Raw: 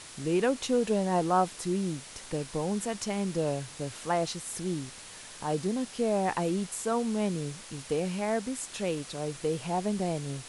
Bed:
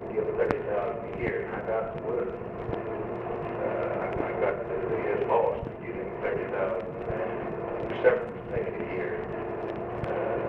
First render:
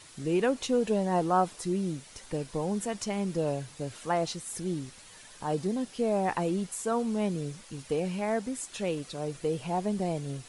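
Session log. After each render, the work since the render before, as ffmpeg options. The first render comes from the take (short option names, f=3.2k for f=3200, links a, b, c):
-af "afftdn=nr=8:nf=-47"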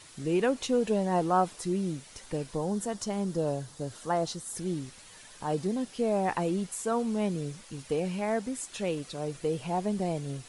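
-filter_complex "[0:a]asettb=1/sr,asplit=3[a][b][c];[a]atrim=end=2.554[d];[b]atrim=start=2.55:end=4.57,asetpts=PTS-STARTPTS,afade=t=in:d=0.004:c=qsin,afade=t=out:st=2.016:d=0.004:c=qsin,equalizer=f=2.4k:t=o:w=0.6:g=-9[e];[c]atrim=start=4.566[f];[d][e]acrossfade=d=0.004:c1=hsin:c2=qsin[g];[g][f]acrossfade=d=0.004:c1=qsin:c2=hsin"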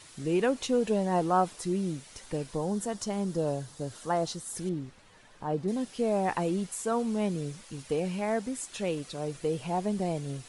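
-filter_complex "[0:a]asettb=1/sr,asplit=3[a][b][c];[a]atrim=end=4.694[d];[b]atrim=start=4.69:end=5.68,asetpts=PTS-STARTPTS,afade=t=in:d=0.004:c=qsin,afade=t=out:st=0.986:d=0.004:c=qsin,lowpass=f=1.4k:p=1[e];[c]atrim=start=5.676[f];[d][e]acrossfade=d=0.004:c1=hsin:c2=qsin[g];[g][f]acrossfade=d=0.004:c1=qsin:c2=hsin"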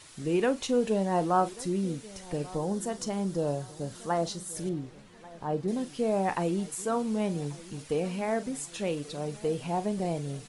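-filter_complex "[0:a]asplit=2[a][b];[b]adelay=41,volume=-14dB[c];[a][c]amix=inputs=2:normalize=0,asplit=2[d][e];[e]adelay=1138,lowpass=f=990:p=1,volume=-19dB,asplit=2[f][g];[g]adelay=1138,lowpass=f=990:p=1,volume=0.51,asplit=2[h][i];[i]adelay=1138,lowpass=f=990:p=1,volume=0.51,asplit=2[j][k];[k]adelay=1138,lowpass=f=990:p=1,volume=0.51[l];[d][f][h][j][l]amix=inputs=5:normalize=0"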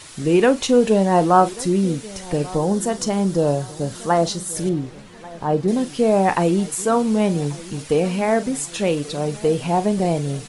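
-af "volume=11dB"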